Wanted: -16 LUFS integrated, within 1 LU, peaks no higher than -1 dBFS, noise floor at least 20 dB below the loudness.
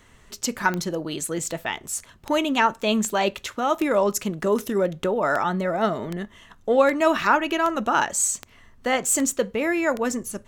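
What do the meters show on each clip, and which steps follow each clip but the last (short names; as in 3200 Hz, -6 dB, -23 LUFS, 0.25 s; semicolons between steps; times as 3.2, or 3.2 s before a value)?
clicks 13; loudness -23.5 LUFS; peak -6.0 dBFS; loudness target -16.0 LUFS
-> de-click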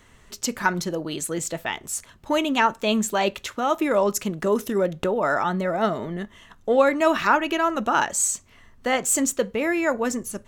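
clicks 0; loudness -23.5 LUFS; peak -6.0 dBFS; loudness target -16.0 LUFS
-> gain +7.5 dB; limiter -1 dBFS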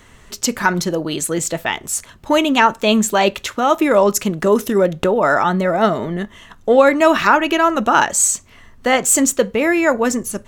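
loudness -16.0 LUFS; peak -1.0 dBFS; noise floor -47 dBFS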